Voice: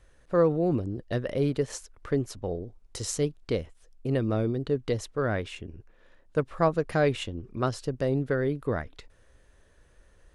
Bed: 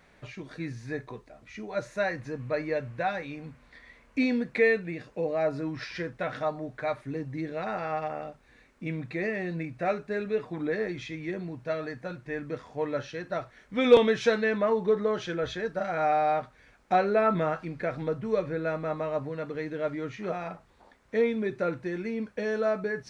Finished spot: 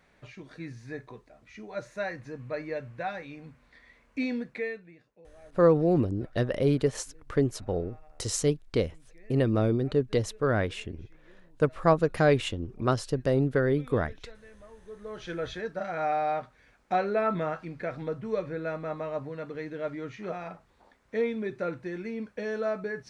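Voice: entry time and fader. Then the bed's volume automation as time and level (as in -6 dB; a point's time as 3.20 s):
5.25 s, +2.0 dB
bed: 4.40 s -4.5 dB
5.27 s -26.5 dB
14.79 s -26.5 dB
15.31 s -3 dB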